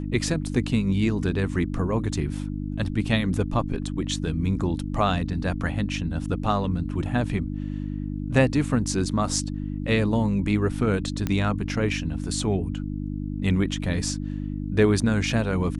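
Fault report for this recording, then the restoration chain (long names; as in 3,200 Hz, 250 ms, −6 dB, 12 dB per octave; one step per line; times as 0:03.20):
mains hum 50 Hz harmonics 6 −30 dBFS
0:11.27: click −12 dBFS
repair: click removal
hum removal 50 Hz, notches 6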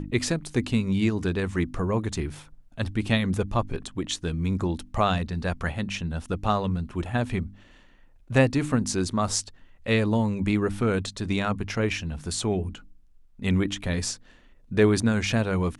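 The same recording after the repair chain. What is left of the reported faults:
none of them is left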